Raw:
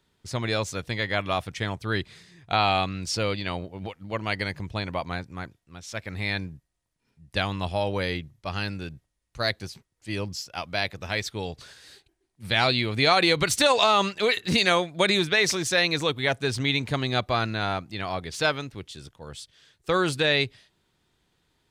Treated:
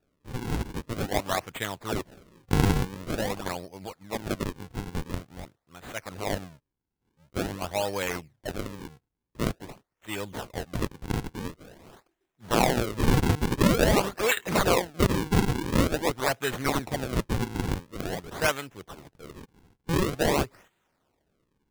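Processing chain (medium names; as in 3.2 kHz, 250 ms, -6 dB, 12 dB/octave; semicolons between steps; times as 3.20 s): low-pass 9.7 kHz 12 dB/octave; bass shelf 220 Hz -12 dB; decimation with a swept rate 41×, swing 160% 0.47 Hz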